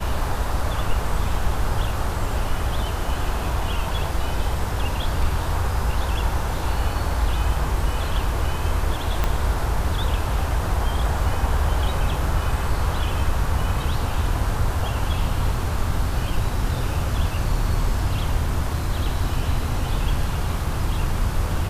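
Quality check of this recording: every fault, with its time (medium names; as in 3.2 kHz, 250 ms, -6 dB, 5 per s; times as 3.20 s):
9.24 s: pop -8 dBFS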